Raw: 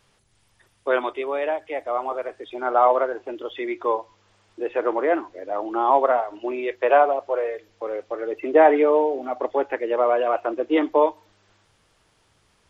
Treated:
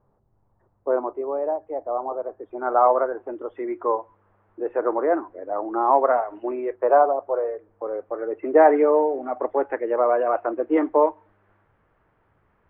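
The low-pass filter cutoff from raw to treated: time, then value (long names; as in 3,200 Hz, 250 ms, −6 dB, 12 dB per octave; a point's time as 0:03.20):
low-pass filter 24 dB per octave
0:02.27 1,000 Hz
0:02.68 1,500 Hz
0:05.59 1,500 Hz
0:06.38 2,000 Hz
0:06.79 1,300 Hz
0:07.84 1,300 Hz
0:08.55 1,800 Hz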